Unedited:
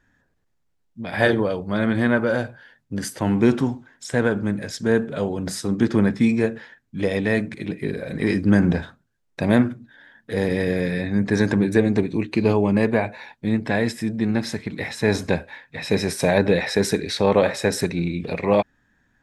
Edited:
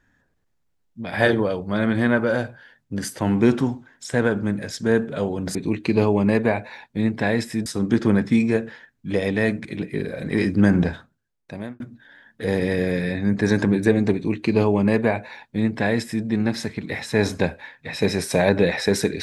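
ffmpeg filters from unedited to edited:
-filter_complex "[0:a]asplit=4[a][b][c][d];[a]atrim=end=5.552[e];[b]atrim=start=12.028:end=14.142[f];[c]atrim=start=5.548:end=9.69,asetpts=PTS-STARTPTS,afade=t=out:st=3.202:d=0.94[g];[d]atrim=start=9.69,asetpts=PTS-STARTPTS,afade=t=in:d=0.004:c=hsin[h];[e][f]acrossfade=d=0.004:c1=hsin:c2=hsin[i];[g][h]concat=n=2:v=0:a=1[j];[i][j]acrossfade=d=0.004:c1=hsin:c2=hsin"

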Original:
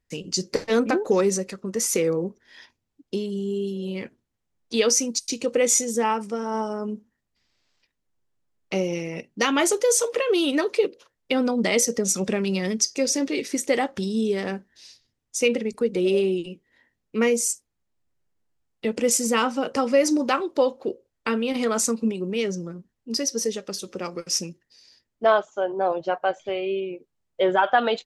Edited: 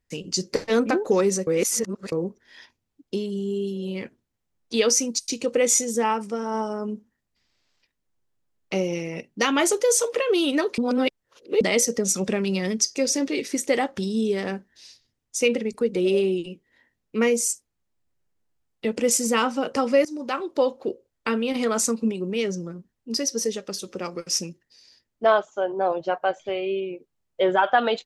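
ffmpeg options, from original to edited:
-filter_complex "[0:a]asplit=6[a][b][c][d][e][f];[a]atrim=end=1.472[g];[b]atrim=start=1.468:end=2.122,asetpts=PTS-STARTPTS,areverse[h];[c]atrim=start=2.118:end=10.782[i];[d]atrim=start=10.778:end=11.612,asetpts=PTS-STARTPTS,areverse[j];[e]atrim=start=11.608:end=20.05,asetpts=PTS-STARTPTS,afade=t=out:st=8.438:d=0.004:c=hsin:silence=0.0891251[k];[f]atrim=start=20.05,asetpts=PTS-STARTPTS,afade=t=in:d=0.79:c=qsin:silence=0.0891251[l];[g][h]acrossfade=d=0.004:c1=hsin:c2=hsin[m];[m][i]acrossfade=d=0.004:c1=hsin:c2=hsin[n];[n][j]acrossfade=d=0.004:c1=hsin:c2=hsin[o];[k][l]concat=n=2:v=0:a=1[p];[o][p]acrossfade=d=0.004:c1=hsin:c2=hsin"

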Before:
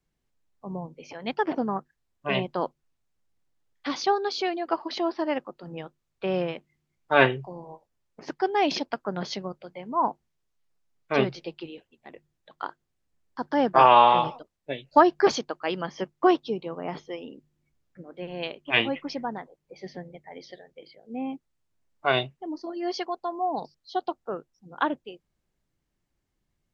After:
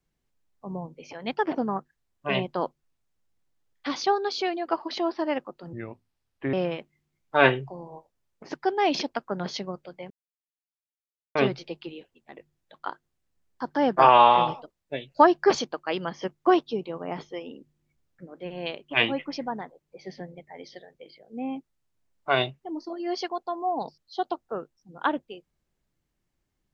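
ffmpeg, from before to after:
-filter_complex "[0:a]asplit=5[a][b][c][d][e];[a]atrim=end=5.734[f];[b]atrim=start=5.73:end=6.3,asetpts=PTS-STARTPTS,asetrate=31311,aresample=44100,atrim=end_sample=35404,asetpts=PTS-STARTPTS[g];[c]atrim=start=6.296:end=9.87,asetpts=PTS-STARTPTS,afade=t=out:st=3.57:d=0.004:c=hsin[h];[d]atrim=start=9.87:end=11.12,asetpts=PTS-STARTPTS,volume=0[i];[e]atrim=start=11.12,asetpts=PTS-STARTPTS,afade=t=in:d=0.004:c=hsin[j];[f][g]acrossfade=d=0.004:c1=hsin:c2=hsin[k];[h][i][j]concat=n=3:v=0:a=1[l];[k][l]acrossfade=d=0.004:c1=hsin:c2=hsin"

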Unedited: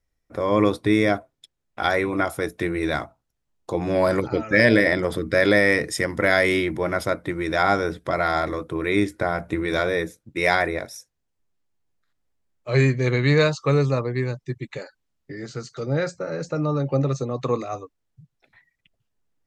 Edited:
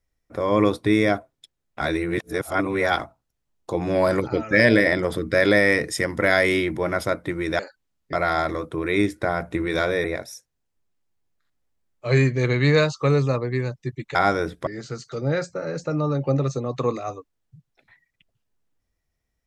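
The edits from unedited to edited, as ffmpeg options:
-filter_complex "[0:a]asplit=8[a][b][c][d][e][f][g][h];[a]atrim=end=1.812[i];[b]atrim=start=1.808:end=2.992,asetpts=PTS-STARTPTS,areverse[j];[c]atrim=start=2.988:end=7.592[k];[d]atrim=start=14.778:end=15.322[l];[e]atrim=start=8.108:end=10.022[m];[f]atrim=start=10.668:end=14.782[n];[g]atrim=start=7.588:end=8.112[o];[h]atrim=start=15.318[p];[i][j]acrossfade=d=0.004:c1=hsin:c2=hsin[q];[q][k]acrossfade=d=0.004:c1=hsin:c2=hsin[r];[r][l]acrossfade=d=0.004:c1=hsin:c2=hsin[s];[s][m]acrossfade=d=0.004:c1=hsin:c2=hsin[t];[t][n]acrossfade=d=0.004:c1=hsin:c2=hsin[u];[u][o]acrossfade=d=0.004:c1=hsin:c2=hsin[v];[v][p]acrossfade=d=0.004:c1=hsin:c2=hsin"

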